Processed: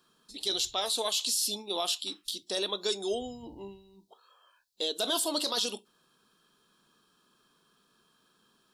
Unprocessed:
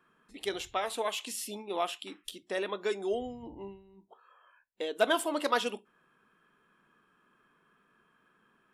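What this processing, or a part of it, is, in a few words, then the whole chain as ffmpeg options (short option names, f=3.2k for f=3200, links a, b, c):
over-bright horn tweeter: -af "highshelf=f=3k:t=q:w=3:g=12,alimiter=limit=-19.5dB:level=0:latency=1:release=11"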